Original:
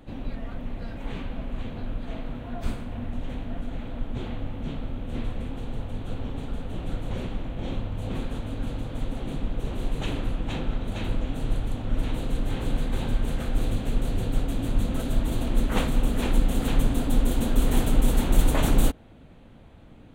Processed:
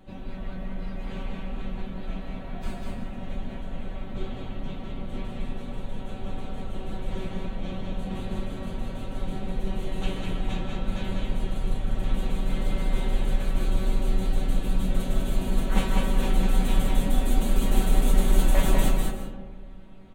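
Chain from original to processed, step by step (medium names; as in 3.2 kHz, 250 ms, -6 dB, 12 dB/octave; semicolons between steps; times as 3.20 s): feedback comb 190 Hz, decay 0.17 s, harmonics all, mix 90%; delay 199 ms -3.5 dB; on a send at -6.5 dB: reverberation RT60 1.5 s, pre-delay 110 ms; on the sum: trim +6.5 dB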